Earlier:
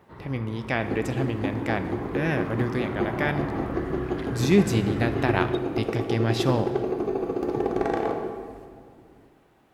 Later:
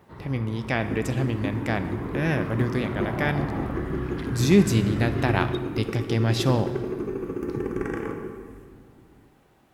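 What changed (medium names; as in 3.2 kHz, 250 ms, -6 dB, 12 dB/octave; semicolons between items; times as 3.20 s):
second sound: add static phaser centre 1.7 kHz, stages 4; master: add tone controls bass +3 dB, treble +4 dB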